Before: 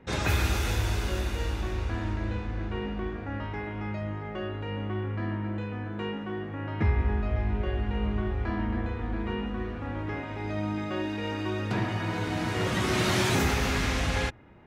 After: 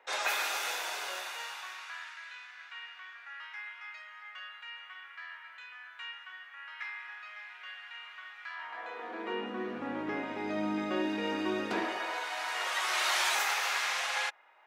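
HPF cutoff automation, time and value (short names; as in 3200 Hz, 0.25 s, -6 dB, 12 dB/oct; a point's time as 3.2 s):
HPF 24 dB/oct
1.04 s 610 Hz
2.16 s 1400 Hz
8.49 s 1400 Hz
8.99 s 480 Hz
9.79 s 200 Hz
11.58 s 200 Hz
12.29 s 740 Hz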